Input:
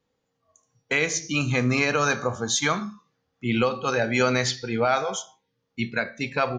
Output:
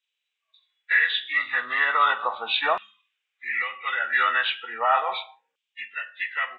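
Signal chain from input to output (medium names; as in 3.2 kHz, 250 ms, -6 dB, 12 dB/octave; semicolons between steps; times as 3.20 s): knee-point frequency compression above 1.2 kHz 1.5:1; hum notches 60/120/180 Hz; LFO high-pass saw down 0.36 Hz 700–3100 Hz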